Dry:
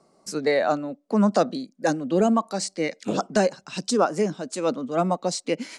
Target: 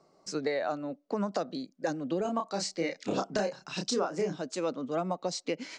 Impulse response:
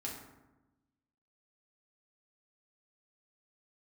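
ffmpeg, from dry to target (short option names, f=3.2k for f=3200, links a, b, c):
-filter_complex "[0:a]lowpass=f=6.8k:w=0.5412,lowpass=f=6.8k:w=1.3066,equalizer=f=220:w=6.6:g=-10,acompressor=threshold=-24dB:ratio=10,asettb=1/sr,asplit=3[a][b][c];[a]atrim=end=2.224[d];[b]atrim=start=2.22:end=4.42,asetpts=PTS-STARTPTS,afade=t=in:d=0.004:c=qsin,afade=t=out:st=2.196:d=0.004:c=qsin,asplit=2[e][f];[f]adelay=30,volume=-4.5dB[g];[e][g]amix=inputs=2:normalize=0,atrim=end_sample=97020[h];[c]atrim=start=4.416[i];[d][h]acrossfade=d=0.004:c1=hsin:c2=qsin[j];[j][i]acrossfade=d=0.004:c1=qsin:c2=hsin,volume=-3dB"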